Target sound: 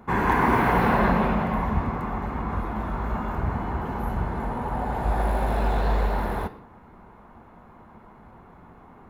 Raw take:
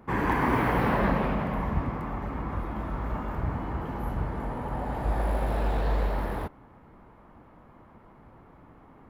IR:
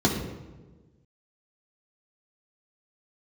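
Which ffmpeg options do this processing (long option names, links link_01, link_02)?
-filter_complex "[0:a]asplit=2[link_01][link_02];[link_02]highpass=frequency=1500:poles=1[link_03];[1:a]atrim=start_sample=2205,afade=type=out:start_time=0.22:duration=0.01,atrim=end_sample=10143,asetrate=42336,aresample=44100[link_04];[link_03][link_04]afir=irnorm=-1:irlink=0,volume=-16dB[link_05];[link_01][link_05]amix=inputs=2:normalize=0,volume=3dB"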